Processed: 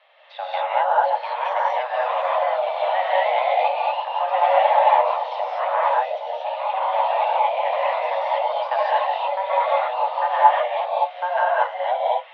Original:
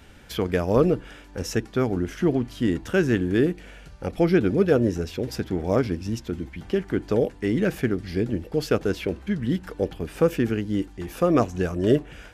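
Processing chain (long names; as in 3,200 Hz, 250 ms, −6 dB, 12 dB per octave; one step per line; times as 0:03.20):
delay with pitch and tempo change per echo 781 ms, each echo +3 semitones, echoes 2
single-sideband voice off tune +370 Hz 180–3,400 Hz
reverb whose tail is shaped and stops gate 260 ms rising, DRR −6 dB
level −5 dB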